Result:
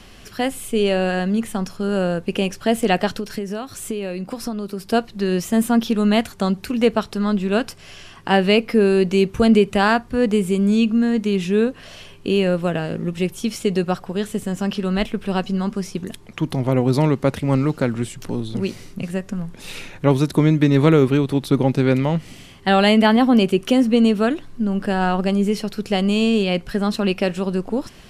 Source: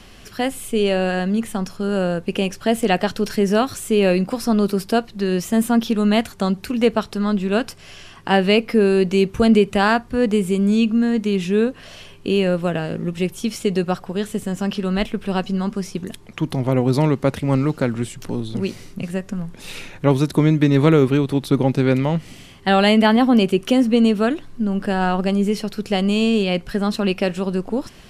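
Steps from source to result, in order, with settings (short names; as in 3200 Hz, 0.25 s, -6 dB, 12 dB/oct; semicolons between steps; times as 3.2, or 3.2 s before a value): 3.14–4.93 compressor 12:1, threshold -23 dBFS, peak gain reduction 12.5 dB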